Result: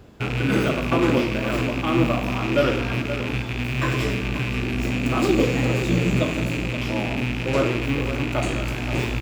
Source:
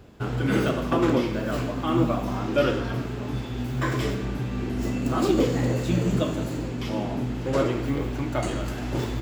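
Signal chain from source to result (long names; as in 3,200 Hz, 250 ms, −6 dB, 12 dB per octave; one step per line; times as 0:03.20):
loose part that buzzes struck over −32 dBFS, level −20 dBFS
on a send: single-tap delay 524 ms −11 dB
on the sum: level +2 dB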